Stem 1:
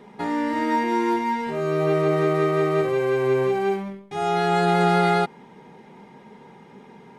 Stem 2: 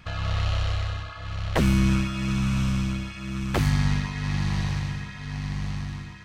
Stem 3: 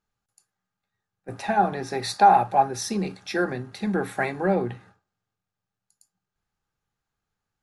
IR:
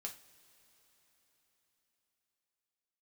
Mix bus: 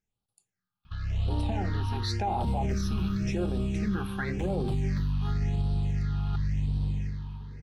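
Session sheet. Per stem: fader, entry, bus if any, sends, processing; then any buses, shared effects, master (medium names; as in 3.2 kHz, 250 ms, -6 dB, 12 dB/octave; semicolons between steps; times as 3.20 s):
-10.5 dB, 1.10 s, no send, no echo send, compressor with a negative ratio -25 dBFS, ratio -0.5
-7.5 dB, 0.85 s, send -11 dB, echo send -5.5 dB, bass shelf 96 Hz +11.5 dB; auto duck -8 dB, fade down 1.70 s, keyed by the third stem
-3.5 dB, 0.00 s, no send, no echo send, none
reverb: on, pre-delay 3 ms
echo: feedback delay 285 ms, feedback 52%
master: phase shifter stages 6, 0.92 Hz, lowest notch 520–1900 Hz; peak limiter -20.5 dBFS, peak gain reduction 9 dB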